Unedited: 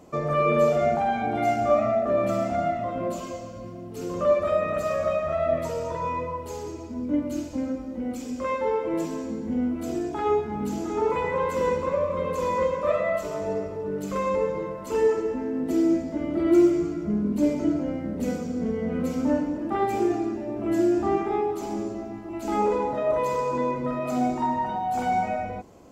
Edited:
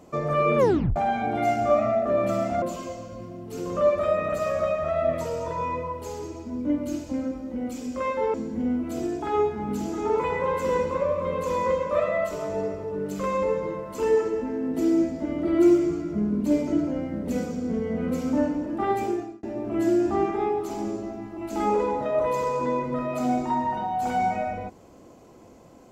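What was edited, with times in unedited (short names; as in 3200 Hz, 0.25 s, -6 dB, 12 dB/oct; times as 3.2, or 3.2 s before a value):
0.58 tape stop 0.38 s
2.62–3.06 cut
8.78–9.26 cut
19.88–20.35 fade out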